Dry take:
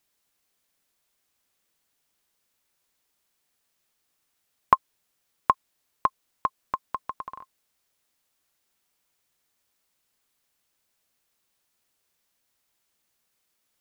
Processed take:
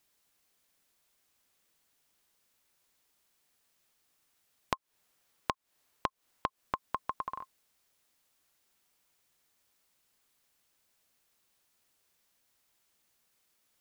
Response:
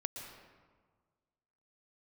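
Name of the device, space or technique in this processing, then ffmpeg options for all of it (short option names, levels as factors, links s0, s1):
serial compression, peaks first: -filter_complex "[0:a]asettb=1/sr,asplit=3[s0][s1][s2];[s0]atrim=end=4.754[s3];[s1]atrim=start=4.75:end=6.61,asetpts=PTS-STARTPTS,afade=t=in:d=0.004:c=qsin,afade=t=out:st=1.856:d=0.004:c=qsin,equalizer=f=930:t=o:w=3:g=3[s4];[s2]atrim=start=6.606[s5];[s3][s4]acrossfade=d=0.004:c1=hsin:c2=qsin[s6];[s6][s5]acrossfade=d=0.004:c1=qsin:c2=hsin,acompressor=threshold=0.0562:ratio=6,acompressor=threshold=0.0282:ratio=2.5,volume=1.12"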